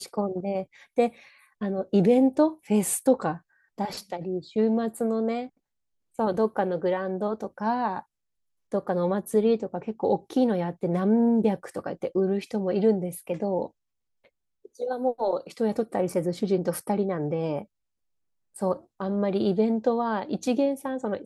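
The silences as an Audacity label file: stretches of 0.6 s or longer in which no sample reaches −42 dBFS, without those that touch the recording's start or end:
5.480000	6.190000	silence
8.000000	8.720000	silence
13.670000	14.650000	silence
17.640000	18.560000	silence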